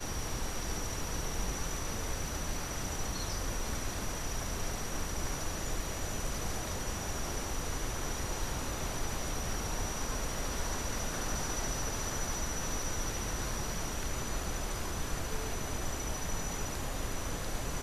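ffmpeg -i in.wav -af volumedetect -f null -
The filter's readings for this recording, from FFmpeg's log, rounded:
mean_volume: -34.5 dB
max_volume: -21.2 dB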